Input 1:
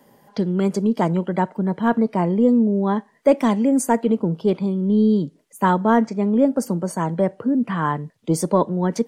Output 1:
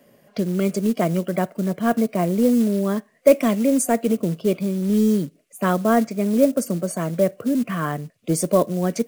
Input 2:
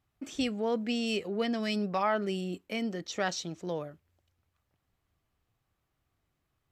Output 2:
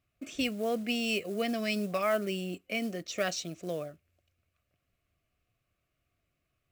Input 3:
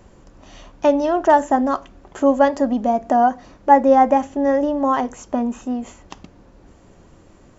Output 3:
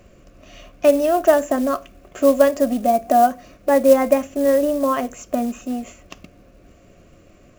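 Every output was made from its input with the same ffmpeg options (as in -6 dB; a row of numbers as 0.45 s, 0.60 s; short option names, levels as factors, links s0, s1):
-af "superequalizer=8b=1.58:9b=0.282:12b=2,acrusher=bits=6:mode=log:mix=0:aa=0.000001,adynamicequalizer=threshold=0.00631:dfrequency=6200:dqfactor=0.7:tfrequency=6200:tqfactor=0.7:attack=5:release=100:ratio=0.375:range=3:mode=boostabove:tftype=highshelf,volume=0.841"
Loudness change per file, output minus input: -1.0 LU, 0.0 LU, 0.0 LU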